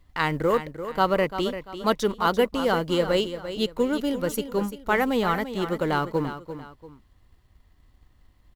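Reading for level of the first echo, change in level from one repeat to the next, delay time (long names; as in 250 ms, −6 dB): −11.0 dB, −9.0 dB, 343 ms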